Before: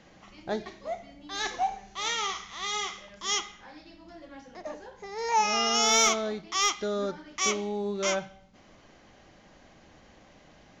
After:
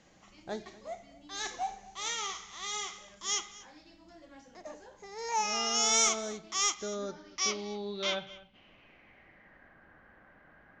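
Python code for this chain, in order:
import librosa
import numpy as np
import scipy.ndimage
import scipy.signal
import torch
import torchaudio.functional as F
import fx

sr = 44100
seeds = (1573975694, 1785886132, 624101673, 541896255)

p1 = fx.high_shelf(x, sr, hz=5500.0, db=-7.0, at=(6.74, 7.59))
p2 = p1 + fx.echo_single(p1, sr, ms=242, db=-20.0, dry=0)
p3 = fx.filter_sweep_lowpass(p2, sr, from_hz=8200.0, to_hz=1600.0, start_s=6.54, end_s=9.79, q=4.9)
y = p3 * 10.0 ** (-7.0 / 20.0)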